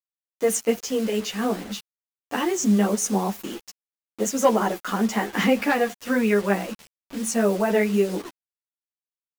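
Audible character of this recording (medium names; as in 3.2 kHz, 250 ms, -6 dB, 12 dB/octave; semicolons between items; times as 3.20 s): tremolo triangle 4.3 Hz, depth 35%; a quantiser's noise floor 6-bit, dither none; a shimmering, thickened sound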